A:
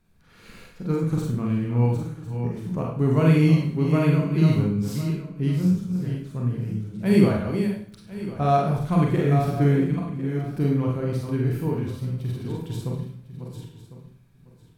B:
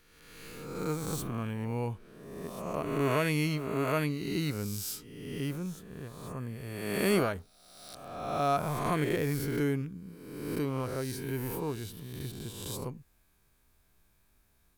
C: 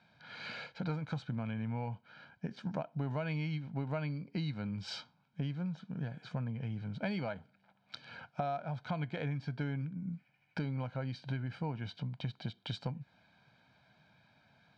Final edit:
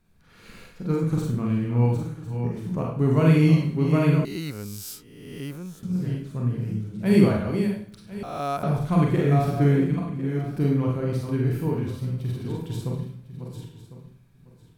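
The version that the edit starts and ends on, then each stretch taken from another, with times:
A
0:04.25–0:05.83: punch in from B
0:08.23–0:08.63: punch in from B
not used: C

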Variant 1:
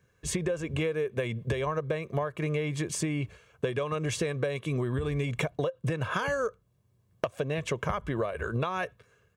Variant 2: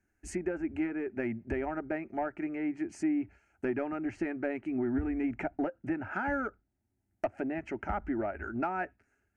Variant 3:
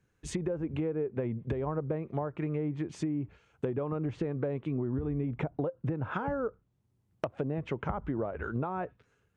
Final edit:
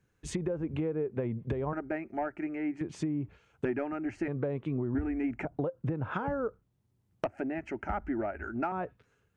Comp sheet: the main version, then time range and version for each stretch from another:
3
0:01.73–0:02.81: punch in from 2
0:03.65–0:04.28: punch in from 2
0:04.95–0:05.45: punch in from 2
0:07.25–0:08.72: punch in from 2
not used: 1

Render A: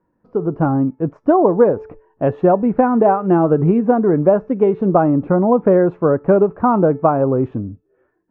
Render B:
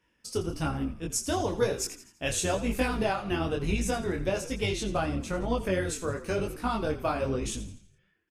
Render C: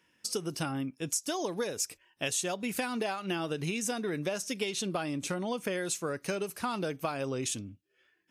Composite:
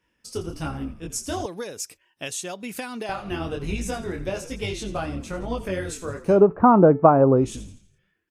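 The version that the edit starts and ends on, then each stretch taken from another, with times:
B
0:01.46–0:03.09: punch in from C
0:06.32–0:07.46: punch in from A, crossfade 0.24 s

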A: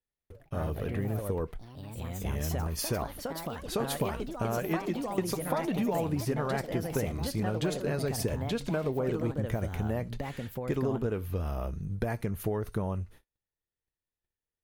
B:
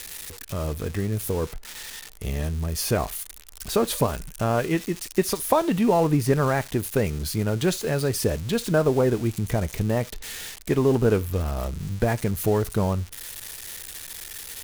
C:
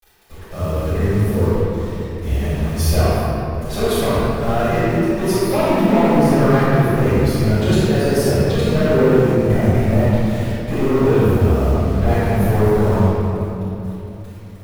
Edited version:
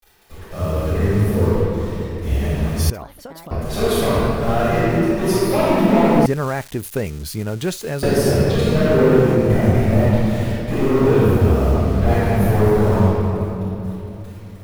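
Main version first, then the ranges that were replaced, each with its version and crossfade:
C
0:02.90–0:03.51: punch in from A
0:06.26–0:08.03: punch in from B

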